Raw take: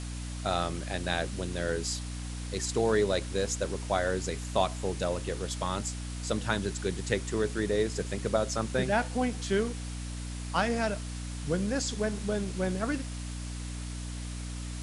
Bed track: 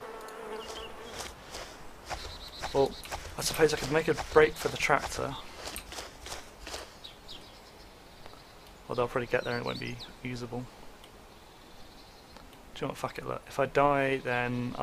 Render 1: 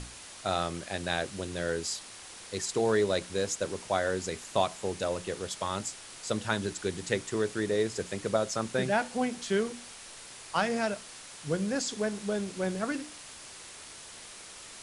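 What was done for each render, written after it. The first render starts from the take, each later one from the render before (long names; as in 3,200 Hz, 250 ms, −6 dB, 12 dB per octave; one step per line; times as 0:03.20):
mains-hum notches 60/120/180/240/300 Hz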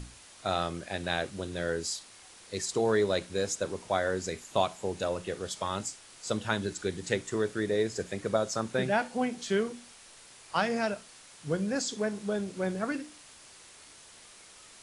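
noise reduction from a noise print 6 dB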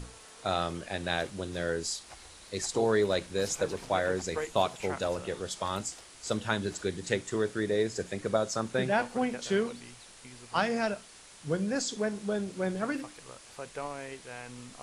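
mix in bed track −13.5 dB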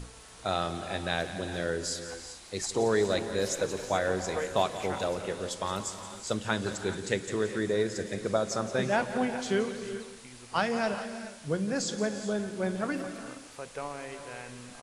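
single-tap delay 174 ms −13.5 dB
reverb whose tail is shaped and stops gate 450 ms rising, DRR 9.5 dB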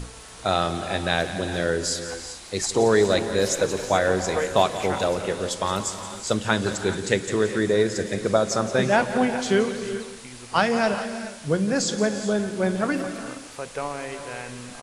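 level +7.5 dB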